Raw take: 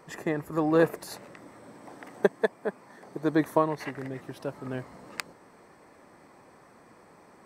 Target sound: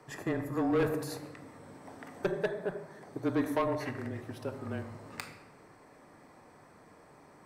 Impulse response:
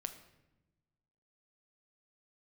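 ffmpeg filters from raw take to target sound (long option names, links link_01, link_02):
-filter_complex "[1:a]atrim=start_sample=2205[link_01];[0:a][link_01]afir=irnorm=-1:irlink=0,asoftclip=type=tanh:threshold=-22.5dB,afreqshift=-24"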